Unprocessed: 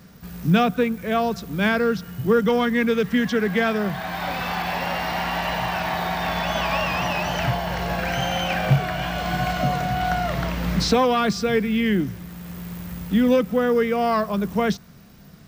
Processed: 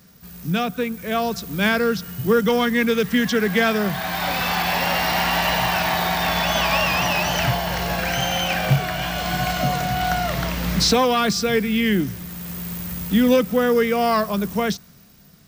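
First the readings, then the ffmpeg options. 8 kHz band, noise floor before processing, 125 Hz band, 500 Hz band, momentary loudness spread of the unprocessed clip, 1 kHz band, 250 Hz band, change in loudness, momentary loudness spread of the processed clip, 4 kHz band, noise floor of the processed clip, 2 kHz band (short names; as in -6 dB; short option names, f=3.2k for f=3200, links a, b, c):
+8.5 dB, -45 dBFS, 0.0 dB, +1.0 dB, 8 LU, +1.5 dB, +0.5 dB, +2.0 dB, 7 LU, +6.0 dB, -49 dBFS, +3.5 dB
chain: -af "highshelf=f=3.6k:g=10,dynaudnorm=f=180:g=11:m=11.5dB,volume=-6dB"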